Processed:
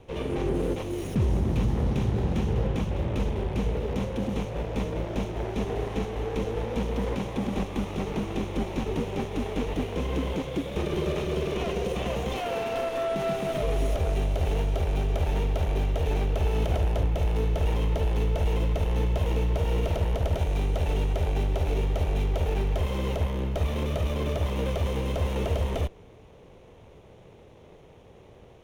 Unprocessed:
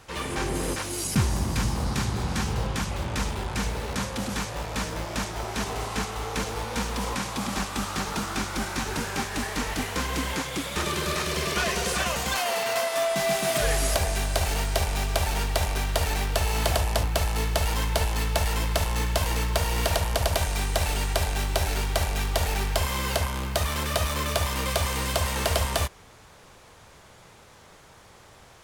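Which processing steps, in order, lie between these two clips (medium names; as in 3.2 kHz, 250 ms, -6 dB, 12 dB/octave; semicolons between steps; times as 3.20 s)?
comb filter that takes the minimum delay 0.31 ms; peaking EQ 440 Hz +10.5 dB 1.2 oct; peak limiter -15.5 dBFS, peak gain reduction 8.5 dB; tone controls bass +7 dB, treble -13 dB; trim -4.5 dB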